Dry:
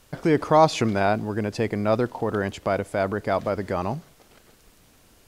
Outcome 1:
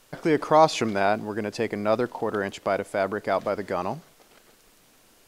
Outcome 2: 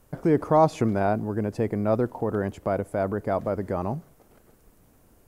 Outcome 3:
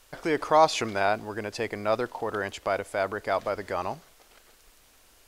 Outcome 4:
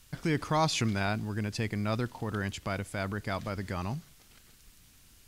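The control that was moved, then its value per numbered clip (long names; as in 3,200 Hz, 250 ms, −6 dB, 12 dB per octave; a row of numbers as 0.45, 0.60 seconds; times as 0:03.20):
parametric band, centre frequency: 60, 3,800, 150, 550 Hertz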